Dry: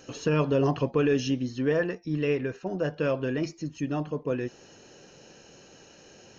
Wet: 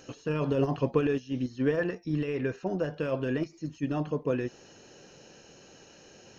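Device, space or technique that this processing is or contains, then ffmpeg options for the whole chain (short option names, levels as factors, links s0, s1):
de-esser from a sidechain: -filter_complex "[0:a]asplit=2[s0][s1];[s1]highpass=f=4200:w=0.5412,highpass=f=4200:w=1.3066,apad=whole_len=281775[s2];[s0][s2]sidechaincompress=threshold=0.00141:ratio=8:attack=2.3:release=40,volume=1.12"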